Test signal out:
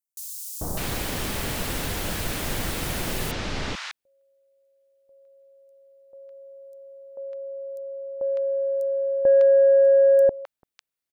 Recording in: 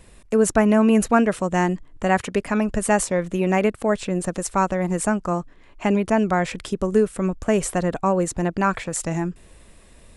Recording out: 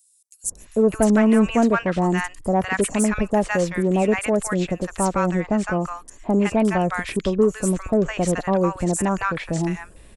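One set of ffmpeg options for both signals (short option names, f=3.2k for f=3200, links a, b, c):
-filter_complex "[0:a]acrossover=split=1000|6000[a][b][c];[a]adelay=440[d];[b]adelay=600[e];[d][e][c]amix=inputs=3:normalize=0,acontrast=77,volume=-5dB"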